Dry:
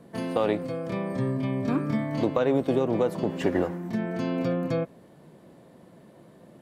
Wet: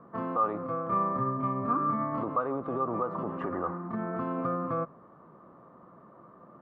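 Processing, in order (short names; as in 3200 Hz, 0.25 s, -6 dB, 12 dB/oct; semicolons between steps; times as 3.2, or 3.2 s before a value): notches 50/100/150 Hz; limiter -21.5 dBFS, peak gain reduction 10 dB; synth low-pass 1200 Hz, resonance Q 14; gain -4.5 dB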